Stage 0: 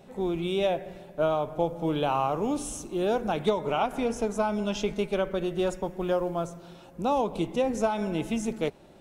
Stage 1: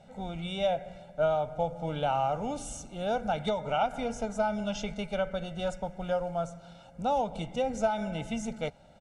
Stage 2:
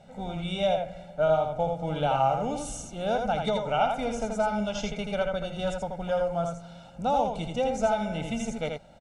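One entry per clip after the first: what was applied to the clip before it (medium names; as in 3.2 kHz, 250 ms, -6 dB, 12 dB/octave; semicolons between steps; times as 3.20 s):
low-pass 9.1 kHz 24 dB/octave; comb 1.4 ms, depth 84%; trim -5 dB
delay 82 ms -4.5 dB; trim +2 dB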